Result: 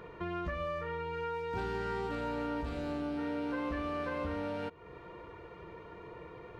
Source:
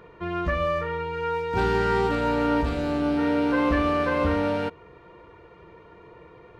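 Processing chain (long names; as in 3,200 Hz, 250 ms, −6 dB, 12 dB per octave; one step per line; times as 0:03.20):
downward compressor 3 to 1, threshold −38 dBFS, peak gain reduction 14.5 dB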